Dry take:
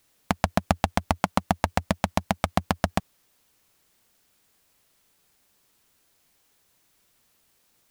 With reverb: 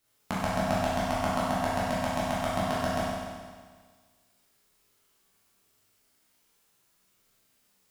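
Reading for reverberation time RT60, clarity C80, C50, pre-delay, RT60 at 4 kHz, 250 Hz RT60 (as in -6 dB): 1.6 s, 0.0 dB, -2.5 dB, 13 ms, 1.6 s, 1.6 s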